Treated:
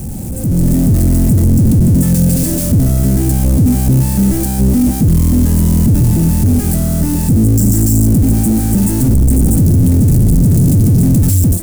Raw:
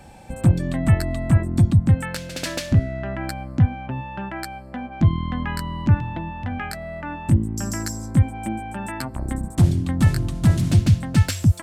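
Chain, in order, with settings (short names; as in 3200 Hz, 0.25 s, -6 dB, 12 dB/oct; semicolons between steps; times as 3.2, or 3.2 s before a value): infinite clipping; EQ curve 240 Hz 0 dB, 1100 Hz -28 dB, 3600 Hz -26 dB, 9000 Hz -5 dB; AGC gain up to 14.5 dB; gain +1 dB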